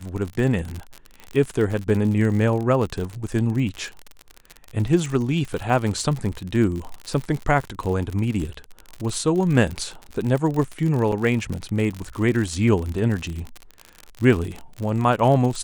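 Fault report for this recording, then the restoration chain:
crackle 57/s -26 dBFS
11.12 gap 4.2 ms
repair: de-click; interpolate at 11.12, 4.2 ms

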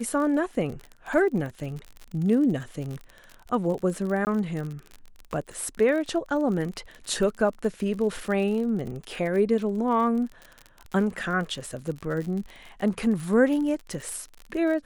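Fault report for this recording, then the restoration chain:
crackle 47/s -32 dBFS
4.25–4.27 gap 19 ms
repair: de-click; interpolate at 4.25, 19 ms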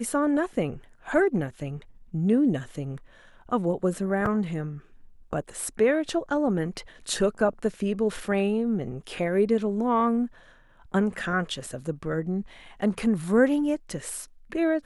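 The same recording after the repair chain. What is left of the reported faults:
none

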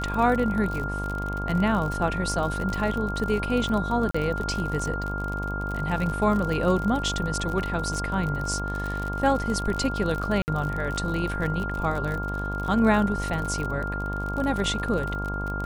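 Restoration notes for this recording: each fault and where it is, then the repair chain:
buzz 50 Hz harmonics 23 -31 dBFS
crackle 55/s -29 dBFS
tone 1400 Hz -31 dBFS
4.11–4.14 gap 35 ms
10.42–10.48 gap 59 ms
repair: de-click; de-hum 50 Hz, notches 23; notch 1400 Hz, Q 30; interpolate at 4.11, 35 ms; interpolate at 10.42, 59 ms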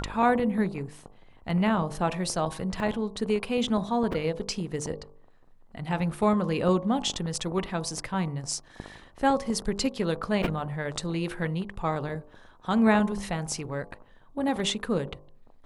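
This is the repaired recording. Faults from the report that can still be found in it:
none

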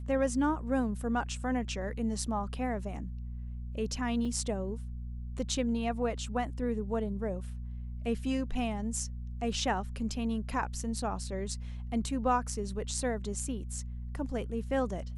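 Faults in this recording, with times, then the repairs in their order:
hum 60 Hz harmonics 4 -39 dBFS
4.25 gap 3.4 ms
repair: de-hum 60 Hz, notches 4; interpolate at 4.25, 3.4 ms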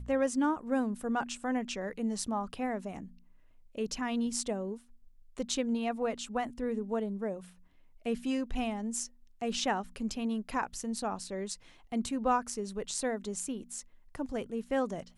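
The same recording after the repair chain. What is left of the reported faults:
none

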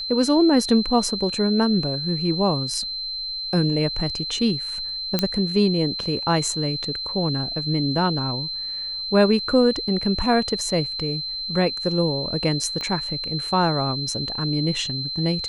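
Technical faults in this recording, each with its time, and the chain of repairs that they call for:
tone 4100 Hz -27 dBFS
5.19 pop -5 dBFS
12.81 pop -17 dBFS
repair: de-click; notch 4100 Hz, Q 30

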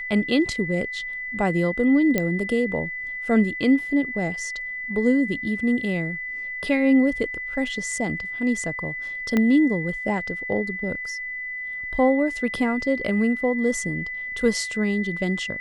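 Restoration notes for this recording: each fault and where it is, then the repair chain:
tone 2000 Hz -29 dBFS
2.18 pop -8 dBFS
9.37 pop -10 dBFS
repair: de-click; notch 2000 Hz, Q 30

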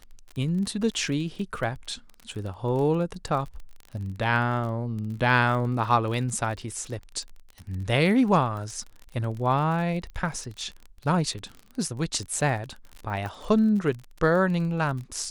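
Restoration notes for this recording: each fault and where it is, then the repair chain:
crackle 35/s -33 dBFS
13.26 pop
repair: de-click

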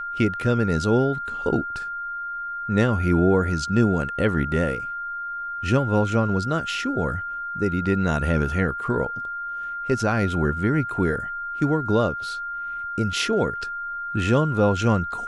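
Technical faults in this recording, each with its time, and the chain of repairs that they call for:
tone 1400 Hz -28 dBFS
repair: notch 1400 Hz, Q 30

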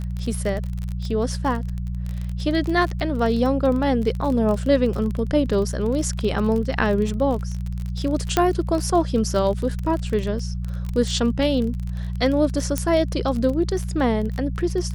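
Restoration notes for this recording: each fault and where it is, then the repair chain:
crackle 30/s -26 dBFS
hum 60 Hz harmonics 3 -27 dBFS
8.37 pop -4 dBFS
12.78 pop -8 dBFS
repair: de-click; de-hum 60 Hz, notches 3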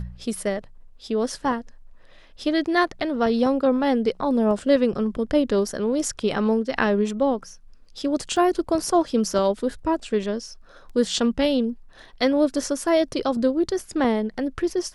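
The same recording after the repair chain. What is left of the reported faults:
8.37 pop

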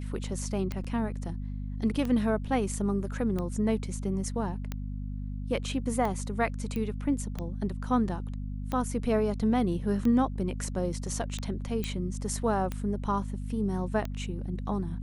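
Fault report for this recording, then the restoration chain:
hum 50 Hz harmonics 5 -35 dBFS
tick 45 rpm -20 dBFS
0.84–0.85 gap 5.3 ms
6.76 pop -22 dBFS
11.84 pop -17 dBFS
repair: de-click; de-hum 50 Hz, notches 5; interpolate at 0.84, 5.3 ms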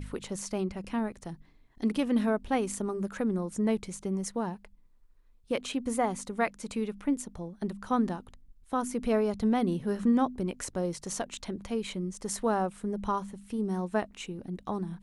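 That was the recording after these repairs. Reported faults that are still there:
none

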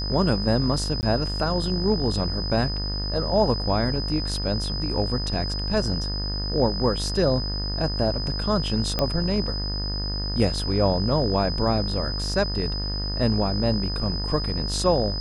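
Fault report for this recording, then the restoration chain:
buzz 50 Hz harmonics 38 -29 dBFS
tone 5000 Hz -30 dBFS
1.01–1.03 gap 19 ms
8.99 pop -9 dBFS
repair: de-click; notch 5000 Hz, Q 30; de-hum 50 Hz, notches 38; interpolate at 1.01, 19 ms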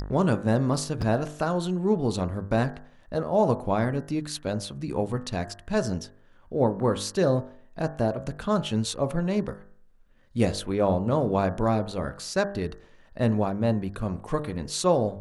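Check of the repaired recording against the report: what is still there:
none

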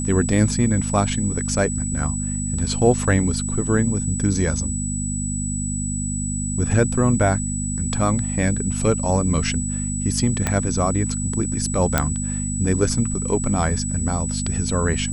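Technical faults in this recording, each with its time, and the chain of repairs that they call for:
hum 50 Hz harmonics 5 -26 dBFS
tone 7900 Hz -28 dBFS
10.47 pop -6 dBFS
11.98 pop -2 dBFS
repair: de-click; notch 7900 Hz, Q 30; de-hum 50 Hz, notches 5

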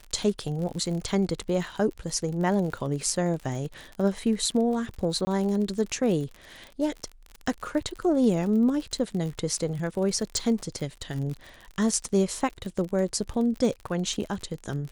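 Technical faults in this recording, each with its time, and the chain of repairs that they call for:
crackle 53/s -33 dBFS
5.25–5.27 gap 20 ms
10.37 pop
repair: de-click; interpolate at 5.25, 20 ms

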